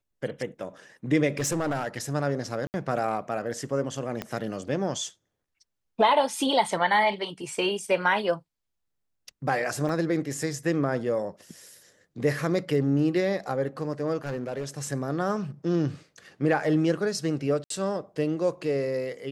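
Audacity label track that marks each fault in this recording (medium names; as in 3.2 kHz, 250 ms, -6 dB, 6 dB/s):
1.380000	2.140000	clipped -23 dBFS
2.670000	2.740000	dropout 69 ms
4.220000	4.220000	pop -16 dBFS
9.890000	9.890000	dropout 2.8 ms
14.250000	14.680000	clipped -26.5 dBFS
17.640000	17.700000	dropout 63 ms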